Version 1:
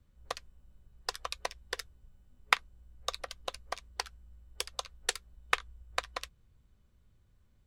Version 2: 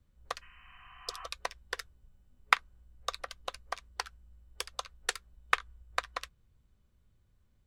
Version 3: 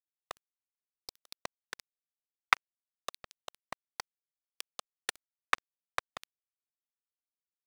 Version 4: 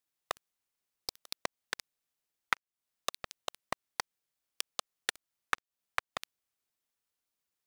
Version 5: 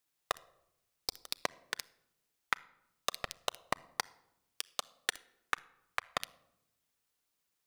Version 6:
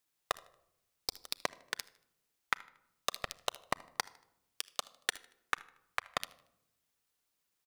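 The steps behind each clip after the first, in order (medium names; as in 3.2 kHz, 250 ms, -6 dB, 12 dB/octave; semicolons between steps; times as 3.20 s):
spectral replace 0.45–1.24 s, 690–3100 Hz both; dynamic bell 1.4 kHz, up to +6 dB, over -49 dBFS, Q 1.1; trim -2.5 dB
crossover distortion -29.5 dBFS
compression 5:1, threshold -38 dBFS, peak gain reduction 19 dB; trim +8.5 dB
peak limiter -17 dBFS, peak gain reduction 7.5 dB; simulated room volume 2800 m³, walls furnished, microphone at 0.4 m; trim +4.5 dB
feedback delay 77 ms, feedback 41%, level -23.5 dB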